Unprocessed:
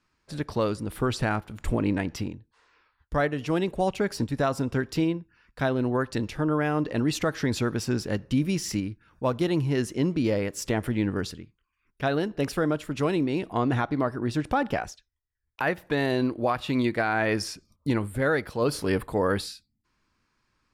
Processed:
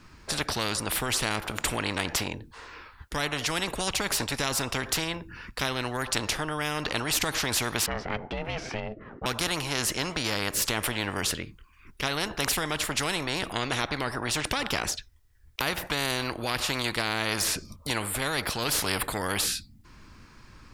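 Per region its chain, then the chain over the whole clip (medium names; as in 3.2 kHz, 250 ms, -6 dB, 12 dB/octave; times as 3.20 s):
7.86–9.26 s: low-pass 1.4 kHz + ring modulator 320 Hz
whole clip: de-esser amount 60%; bass shelf 240 Hz +7.5 dB; spectrum-flattening compressor 4:1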